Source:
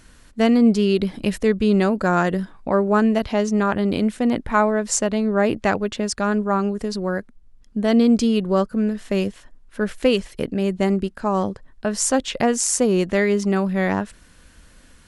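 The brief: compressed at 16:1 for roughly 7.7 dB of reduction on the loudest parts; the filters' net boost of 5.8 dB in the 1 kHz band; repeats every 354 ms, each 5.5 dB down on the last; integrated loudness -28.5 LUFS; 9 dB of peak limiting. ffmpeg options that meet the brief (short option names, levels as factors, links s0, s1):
-af "equalizer=f=1000:t=o:g=7.5,acompressor=threshold=0.141:ratio=16,alimiter=limit=0.2:level=0:latency=1,aecho=1:1:354|708|1062|1416|1770|2124|2478:0.531|0.281|0.149|0.079|0.0419|0.0222|0.0118,volume=0.562"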